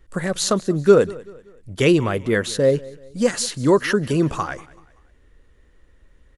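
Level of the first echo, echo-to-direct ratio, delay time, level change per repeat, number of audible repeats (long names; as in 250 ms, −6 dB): −21.0 dB, −20.5 dB, 191 ms, −8.0 dB, 2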